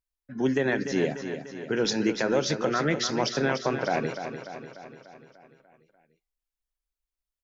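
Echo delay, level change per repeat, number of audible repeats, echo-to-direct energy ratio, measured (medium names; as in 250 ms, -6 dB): 295 ms, -5.0 dB, 6, -7.5 dB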